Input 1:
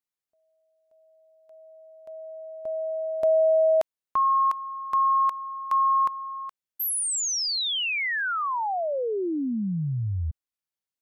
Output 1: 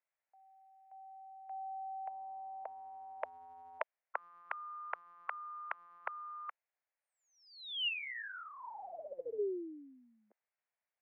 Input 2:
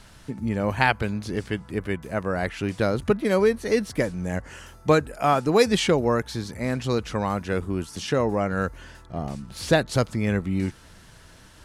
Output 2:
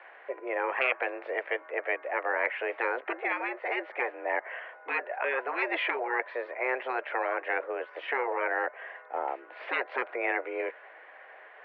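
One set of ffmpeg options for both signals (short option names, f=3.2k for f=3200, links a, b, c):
-af "highpass=f=420:t=q:w=0.5412,highpass=f=420:t=q:w=1.307,lowpass=f=2.1k:t=q:w=0.5176,lowpass=f=2.1k:t=q:w=0.7071,lowpass=f=2.1k:t=q:w=1.932,afreqshift=130,afftfilt=real='re*lt(hypot(re,im),0.141)':imag='im*lt(hypot(re,im),0.141)':win_size=1024:overlap=0.75,equalizer=f=1.2k:t=o:w=0.94:g=-7,volume=9dB"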